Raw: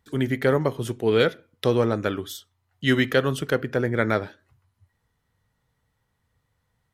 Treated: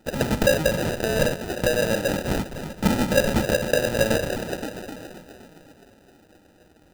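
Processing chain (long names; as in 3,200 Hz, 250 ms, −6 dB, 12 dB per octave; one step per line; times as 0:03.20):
mid-hump overdrive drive 31 dB, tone 4,800 Hz, clips at −6.5 dBFS
high-pass filter 280 Hz 6 dB per octave
notch filter 390 Hz, Q 12
on a send: feedback echo with a band-pass in the loop 259 ms, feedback 61%, band-pass 1,200 Hz, level −8.5 dB
on the sum: flanger swept by the level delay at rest 7.2 ms, full sweep at −14 dBFS
parametric band 360 Hz −13 dB 1.5 octaves
hollow resonant body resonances 540/1,700/3,100 Hz, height 11 dB
in parallel at −1.5 dB: downward compressor, threshold −29 dBFS, peak gain reduction 15.5 dB
on the sum: high-shelf EQ 11,000 Hz −12 dB
sample-rate reduction 1,100 Hz, jitter 0%
level −2.5 dB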